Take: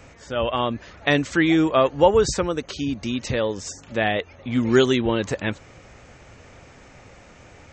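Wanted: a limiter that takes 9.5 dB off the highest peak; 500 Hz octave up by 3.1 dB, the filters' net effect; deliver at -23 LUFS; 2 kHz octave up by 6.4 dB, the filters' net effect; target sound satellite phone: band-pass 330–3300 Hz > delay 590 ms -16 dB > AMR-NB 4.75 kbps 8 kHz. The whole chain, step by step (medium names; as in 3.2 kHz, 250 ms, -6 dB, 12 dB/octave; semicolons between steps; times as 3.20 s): peaking EQ 500 Hz +4.5 dB; peaking EQ 2 kHz +8 dB; peak limiter -9 dBFS; band-pass 330–3300 Hz; delay 590 ms -16 dB; trim +1.5 dB; AMR-NB 4.75 kbps 8 kHz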